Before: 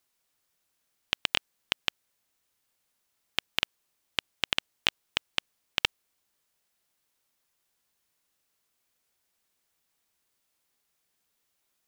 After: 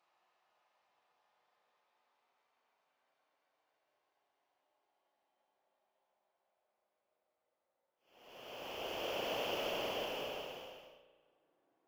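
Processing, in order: LPF 4600 Hz; reverse; compressor 6:1, threshold -35 dBFS, peak gain reduction 14 dB; reverse; band-pass sweep 1200 Hz -> 410 Hz, 3.68–4.39; harmonic tremolo 1.4 Hz, depth 50%, crossover 2100 Hz; in parallel at -7.5 dB: wrapped overs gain 38.5 dB; on the sum: Paulstretch 32×, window 0.10 s, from 3.89; spring tank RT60 1.4 s, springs 33 ms, chirp 25 ms, DRR 8 dB; gain +16.5 dB

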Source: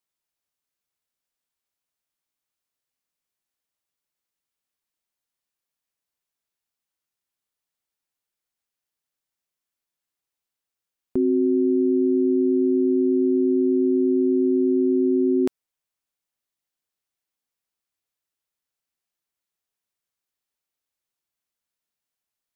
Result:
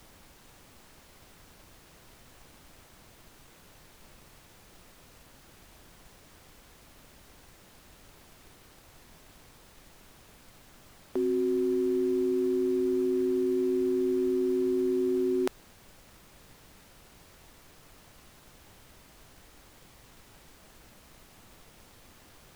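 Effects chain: HPF 600 Hz 12 dB/oct; added noise pink -55 dBFS; in parallel at -5 dB: crossover distortion -48 dBFS

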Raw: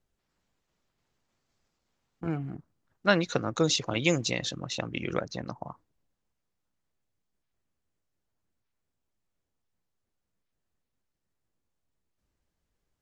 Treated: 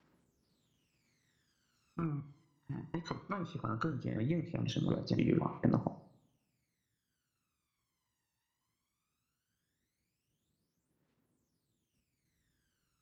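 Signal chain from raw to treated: slices in reverse order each 0.245 s, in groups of 2; HPF 120 Hz 12 dB/oct; bell 690 Hz -5.5 dB 0.66 oct; treble ducked by the level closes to 870 Hz, closed at -27 dBFS; compressor 6:1, threshold -35 dBFS, peak gain reduction 13 dB; two-slope reverb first 0.57 s, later 1.5 s, from -18 dB, DRR 8.5 dB; phaser 0.18 Hz, delay 1.1 ms, feedback 77%

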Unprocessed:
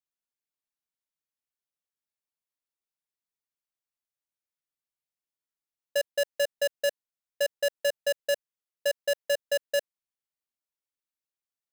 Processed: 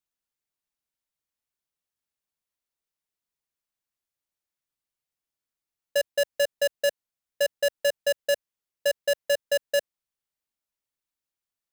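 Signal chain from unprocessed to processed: low shelf 130 Hz +5.5 dB; gain +2.5 dB

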